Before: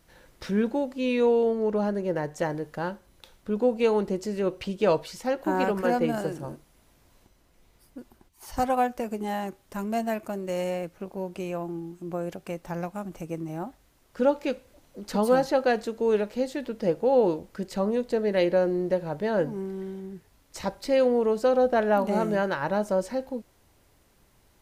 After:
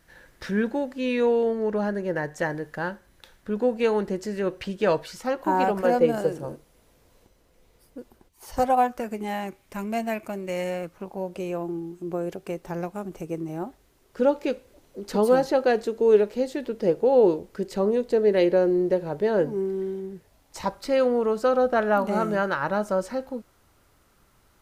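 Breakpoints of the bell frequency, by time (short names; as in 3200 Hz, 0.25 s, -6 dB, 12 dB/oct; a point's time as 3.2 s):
bell +9 dB 0.4 oct
5.02 s 1700 Hz
6.07 s 480 Hz
8.57 s 480 Hz
9.19 s 2300 Hz
10.53 s 2300 Hz
11.52 s 400 Hz
20.03 s 400 Hz
20.83 s 1300 Hz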